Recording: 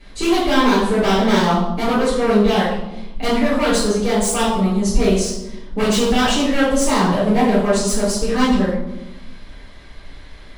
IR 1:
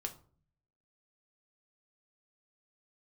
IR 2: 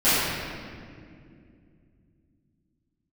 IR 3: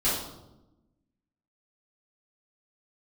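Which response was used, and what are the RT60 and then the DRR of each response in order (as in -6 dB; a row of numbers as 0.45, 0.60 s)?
3; 0.45, 2.3, 0.95 s; 4.0, -19.5, -11.5 dB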